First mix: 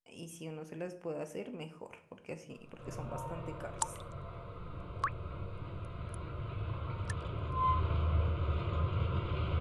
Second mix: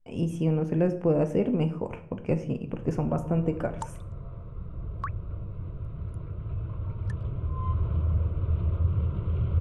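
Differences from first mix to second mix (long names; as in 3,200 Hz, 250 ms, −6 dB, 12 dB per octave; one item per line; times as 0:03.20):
speech +11.0 dB
first sound: send off
master: add spectral tilt −4 dB per octave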